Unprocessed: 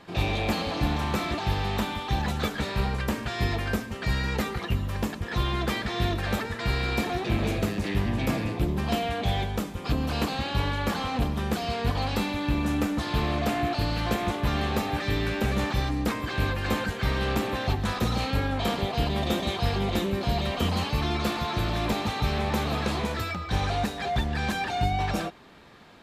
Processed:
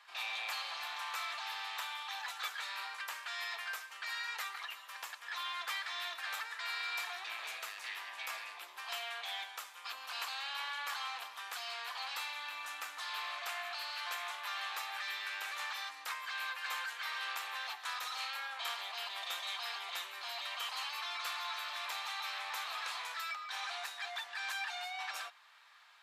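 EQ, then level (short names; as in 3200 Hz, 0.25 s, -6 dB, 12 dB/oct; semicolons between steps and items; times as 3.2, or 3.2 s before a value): HPF 1000 Hz 24 dB/oct; -6.0 dB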